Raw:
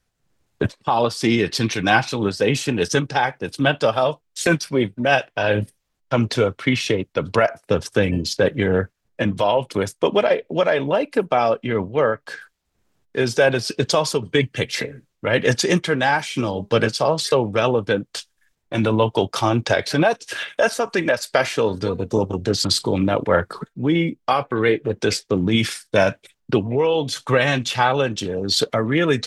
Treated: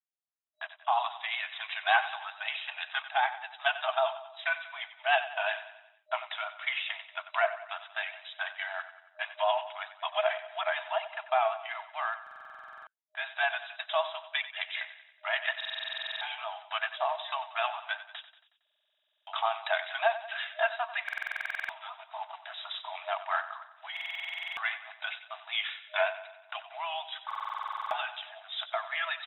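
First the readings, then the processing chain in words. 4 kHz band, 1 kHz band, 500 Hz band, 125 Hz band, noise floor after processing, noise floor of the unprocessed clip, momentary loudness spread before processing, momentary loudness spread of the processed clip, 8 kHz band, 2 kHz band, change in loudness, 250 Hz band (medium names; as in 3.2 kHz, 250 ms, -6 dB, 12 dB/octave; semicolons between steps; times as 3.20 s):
-10.0 dB, -8.5 dB, -17.0 dB, under -40 dB, -77 dBFS, -71 dBFS, 6 LU, 12 LU, under -40 dB, -8.0 dB, -12.5 dB, under -40 dB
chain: block-companded coder 5-bit; gate -44 dBFS, range -21 dB; vibrato 5.3 Hz 67 cents; FFT band-pass 620–3900 Hz; on a send: feedback delay 92 ms, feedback 53%, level -13.5 dB; on the sum: buffer glitch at 12.22/15.56/18.62/21.04/23.92/27.26 s, samples 2048, times 13; trim -7.5 dB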